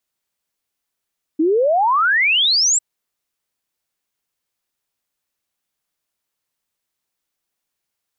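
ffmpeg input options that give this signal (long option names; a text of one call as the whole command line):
ffmpeg -f lavfi -i "aevalsrc='0.237*clip(min(t,1.4-t)/0.01,0,1)*sin(2*PI*300*1.4/log(7900/300)*(exp(log(7900/300)*t/1.4)-1))':duration=1.4:sample_rate=44100" out.wav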